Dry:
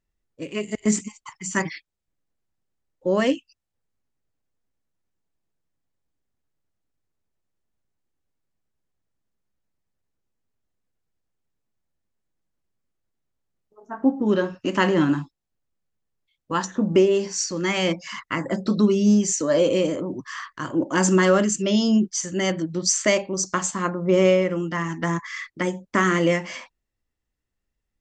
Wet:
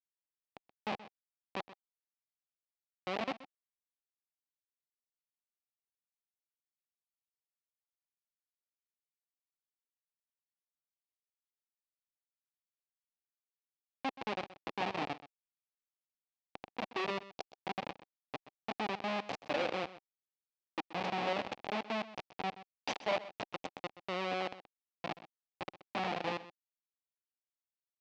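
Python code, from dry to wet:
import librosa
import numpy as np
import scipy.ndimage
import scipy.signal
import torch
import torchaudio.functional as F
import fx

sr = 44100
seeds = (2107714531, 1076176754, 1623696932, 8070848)

p1 = fx.spec_box(x, sr, start_s=15.04, length_s=2.95, low_hz=810.0, high_hz=2000.0, gain_db=-7)
p2 = fx.schmitt(p1, sr, flips_db=-16.0)
p3 = fx.cabinet(p2, sr, low_hz=370.0, low_slope=12, high_hz=4400.0, hz=(370.0, 780.0, 1500.0, 2500.0), db=(-5, 7, -4, 5))
p4 = p3 + fx.echo_single(p3, sr, ms=127, db=-16.0, dry=0)
y = p4 * 10.0 ** (-4.5 / 20.0)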